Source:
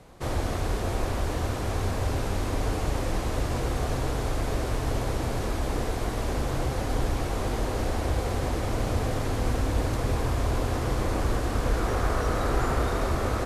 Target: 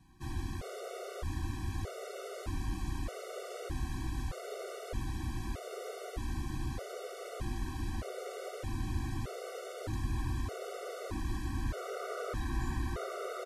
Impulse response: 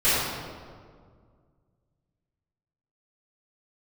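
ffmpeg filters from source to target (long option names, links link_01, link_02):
-filter_complex "[0:a]bandreject=frequency=860:width=5.5,asplit=2[link_01][link_02];[link_02]aecho=0:1:420:0.473[link_03];[link_01][link_03]amix=inputs=2:normalize=0,afftfilt=real='re*gt(sin(2*PI*0.81*pts/sr)*(1-2*mod(floor(b*sr/1024/380),2)),0)':imag='im*gt(sin(2*PI*0.81*pts/sr)*(1-2*mod(floor(b*sr/1024/380),2)),0)':win_size=1024:overlap=0.75,volume=-8.5dB"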